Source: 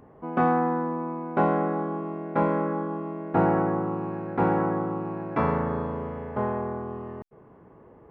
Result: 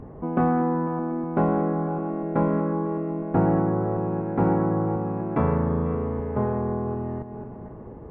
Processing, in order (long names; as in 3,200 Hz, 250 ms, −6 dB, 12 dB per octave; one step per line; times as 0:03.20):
feedback delay that plays each chunk backwards 248 ms, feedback 53%, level −13 dB
spectral tilt −3 dB per octave
downward compressor 1.5 to 1, threshold −38 dBFS, peak gain reduction 9.5 dB
level +5 dB